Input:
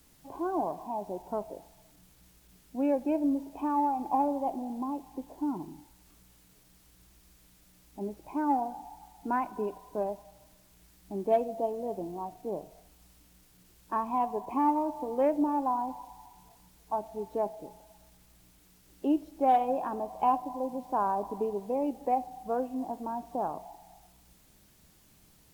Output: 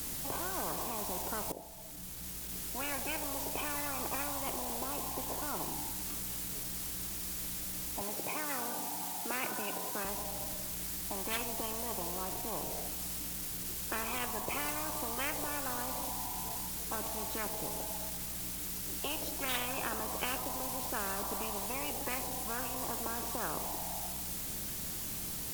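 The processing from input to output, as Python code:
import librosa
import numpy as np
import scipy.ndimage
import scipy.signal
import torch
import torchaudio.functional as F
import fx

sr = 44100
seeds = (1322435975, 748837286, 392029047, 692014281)

y = fx.highpass(x, sr, hz=190.0, slope=12, at=(8.01, 10.05))
y = fx.edit(y, sr, fx.fade_in_from(start_s=1.52, length_s=1.29, floor_db=-18.0), tone=tone)
y = fx.high_shelf(y, sr, hz=5400.0, db=7.5)
y = fx.spectral_comp(y, sr, ratio=10.0)
y = y * librosa.db_to_amplitude(-5.0)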